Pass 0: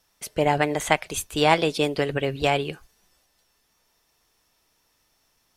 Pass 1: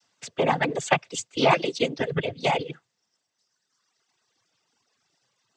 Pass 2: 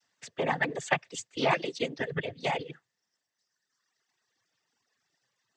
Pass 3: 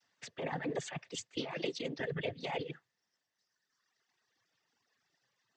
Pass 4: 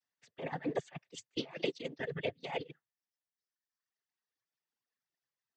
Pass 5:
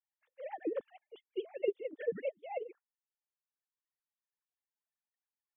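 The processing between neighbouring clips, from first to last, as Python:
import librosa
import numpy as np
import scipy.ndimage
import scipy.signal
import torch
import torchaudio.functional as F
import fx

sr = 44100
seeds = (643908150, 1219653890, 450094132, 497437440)

y1 = fx.noise_vocoder(x, sr, seeds[0], bands=16)
y1 = fx.dereverb_blind(y1, sr, rt60_s=1.5)
y2 = fx.peak_eq(y1, sr, hz=1800.0, db=10.0, octaves=0.22)
y2 = y2 * 10.0 ** (-7.0 / 20.0)
y3 = scipy.signal.sosfilt(scipy.signal.butter(2, 5900.0, 'lowpass', fs=sr, output='sos'), y2)
y3 = fx.over_compress(y3, sr, threshold_db=-33.0, ratio=-1.0)
y3 = y3 * 10.0 ** (-4.0 / 20.0)
y4 = fx.upward_expand(y3, sr, threshold_db=-47.0, expansion=2.5)
y4 = y4 * 10.0 ** (4.0 / 20.0)
y5 = fx.sine_speech(y4, sr)
y5 = fx.high_shelf(y5, sr, hz=2400.0, db=-12.0)
y5 = y5 * 10.0 ** (1.0 / 20.0)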